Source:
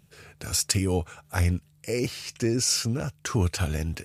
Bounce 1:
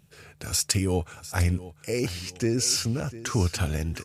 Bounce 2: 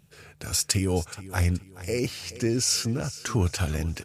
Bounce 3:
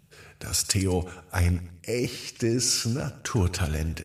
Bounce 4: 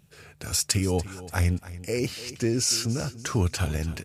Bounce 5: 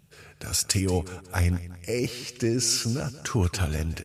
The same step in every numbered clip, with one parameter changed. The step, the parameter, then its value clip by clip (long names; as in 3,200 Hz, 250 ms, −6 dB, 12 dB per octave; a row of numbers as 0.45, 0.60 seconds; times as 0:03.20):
repeating echo, delay time: 700, 425, 104, 289, 182 milliseconds